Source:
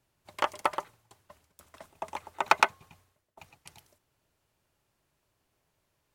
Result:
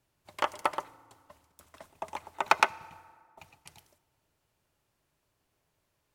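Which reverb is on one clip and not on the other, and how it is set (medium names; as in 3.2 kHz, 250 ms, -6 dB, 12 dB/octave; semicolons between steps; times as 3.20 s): FDN reverb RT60 1.9 s, low-frequency decay 1.3×, high-frequency decay 0.55×, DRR 19.5 dB; trim -1 dB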